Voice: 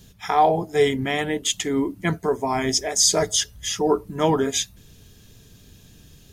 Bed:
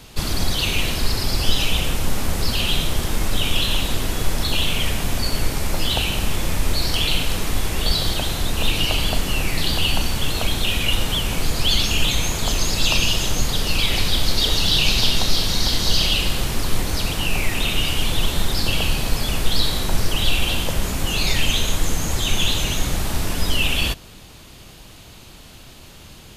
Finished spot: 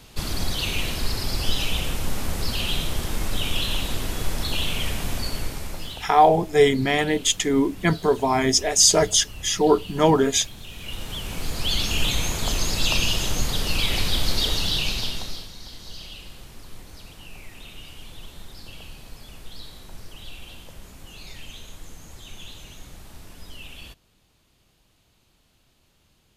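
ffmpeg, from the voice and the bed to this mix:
ffmpeg -i stem1.wav -i stem2.wav -filter_complex "[0:a]adelay=5800,volume=2.5dB[link_01];[1:a]volume=11.5dB,afade=type=out:start_time=5.12:duration=0.98:silence=0.177828,afade=type=in:start_time=10.7:duration=1.37:silence=0.149624,afade=type=out:start_time=14.36:duration=1.15:silence=0.133352[link_02];[link_01][link_02]amix=inputs=2:normalize=0" out.wav

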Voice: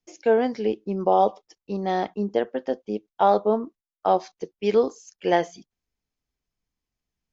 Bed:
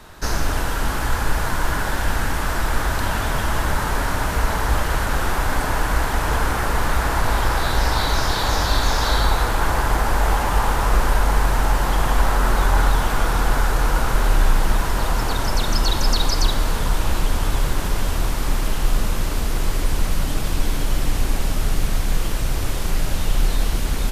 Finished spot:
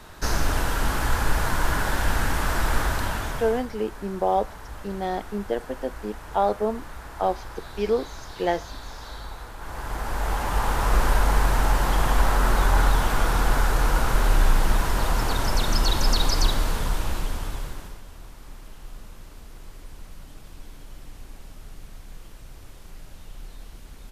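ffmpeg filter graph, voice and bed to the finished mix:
ffmpeg -i stem1.wav -i stem2.wav -filter_complex "[0:a]adelay=3150,volume=-3.5dB[link_01];[1:a]volume=15dB,afade=type=out:start_time=2.77:duration=0.91:silence=0.133352,afade=type=in:start_time=9.58:duration=1.47:silence=0.141254,afade=type=out:start_time=16.43:duration=1.58:silence=0.105925[link_02];[link_01][link_02]amix=inputs=2:normalize=0" out.wav

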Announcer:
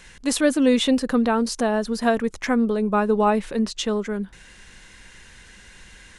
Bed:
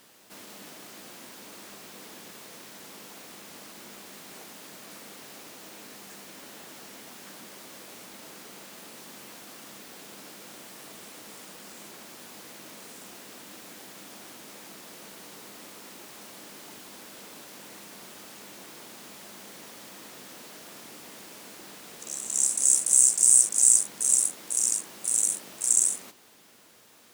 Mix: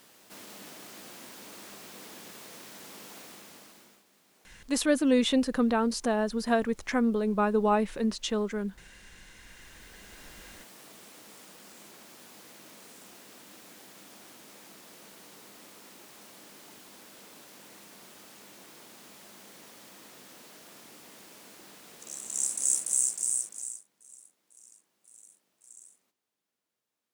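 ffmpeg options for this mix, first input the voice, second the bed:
ffmpeg -i stem1.wav -i stem2.wav -filter_complex "[0:a]adelay=4450,volume=-5.5dB[link_01];[1:a]volume=13dB,afade=type=out:start_time=3.18:duration=0.86:silence=0.11885,afade=type=in:start_time=9.31:duration=1.08:silence=0.199526,afade=type=out:start_time=22.73:duration=1.1:silence=0.0562341[link_02];[link_01][link_02]amix=inputs=2:normalize=0" out.wav

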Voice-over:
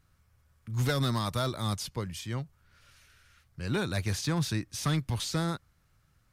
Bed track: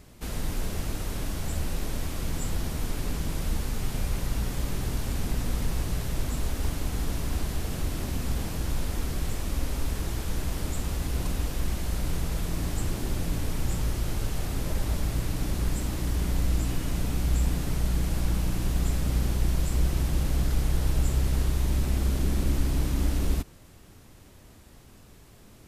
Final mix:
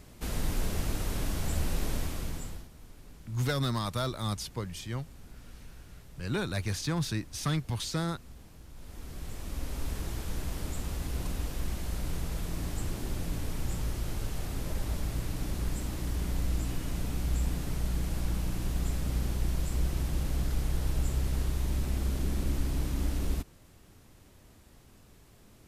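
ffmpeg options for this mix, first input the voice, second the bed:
ffmpeg -i stem1.wav -i stem2.wav -filter_complex "[0:a]adelay=2600,volume=-1.5dB[link_01];[1:a]volume=15.5dB,afade=type=out:start_time=1.92:duration=0.76:silence=0.0944061,afade=type=in:start_time=8.73:duration=1.18:silence=0.158489[link_02];[link_01][link_02]amix=inputs=2:normalize=0" out.wav

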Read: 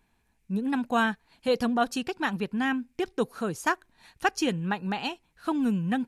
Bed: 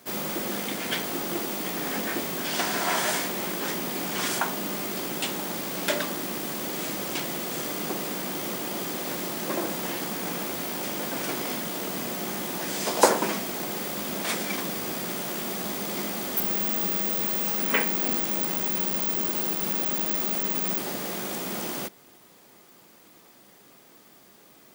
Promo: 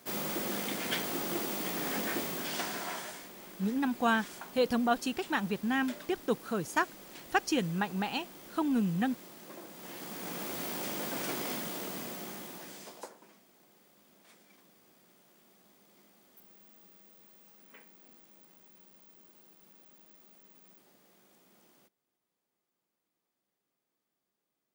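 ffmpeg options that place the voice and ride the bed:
ffmpeg -i stem1.wav -i stem2.wav -filter_complex "[0:a]adelay=3100,volume=-3dB[link_01];[1:a]volume=9dB,afade=type=out:start_time=2.16:duration=0.98:silence=0.188365,afade=type=in:start_time=9.73:duration=0.92:silence=0.211349,afade=type=out:start_time=11.53:duration=1.56:silence=0.0473151[link_02];[link_01][link_02]amix=inputs=2:normalize=0" out.wav

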